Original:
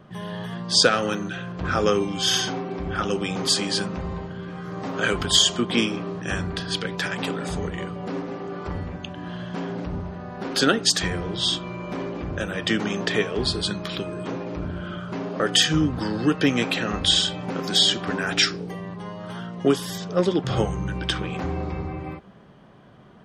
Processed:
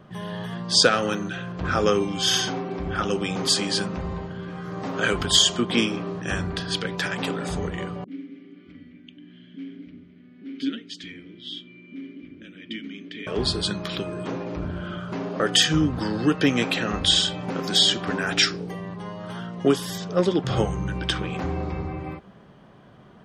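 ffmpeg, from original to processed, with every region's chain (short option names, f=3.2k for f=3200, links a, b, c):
-filter_complex "[0:a]asettb=1/sr,asplit=3[a][b][c];[a]atrim=end=8.044[d];[b]atrim=start=8.04:end=13.27,asetpts=PTS-STARTPTS,afade=t=in:d=0.004:c=qsin,afade=t=out:st=5.226:d=0.004:c=qsin,asplit=3[e][f][g];[e]bandpass=f=270:t=q:w=8,volume=0dB[h];[f]bandpass=f=2.29k:t=q:w=8,volume=-6dB[i];[g]bandpass=f=3.01k:t=q:w=8,volume=-9dB[j];[h][i][j]amix=inputs=3:normalize=0,acrossover=split=430[k][l];[l]adelay=40[m];[k][m]amix=inputs=2:normalize=0,atrim=end_sample=230643[n];[c]atrim=start=13.266[o];[d][n]acrossfade=d=0.004:c1=hsin:c2=qsin[p];[p][o]acrossfade=d=0.004:c1=qsin:c2=hsin"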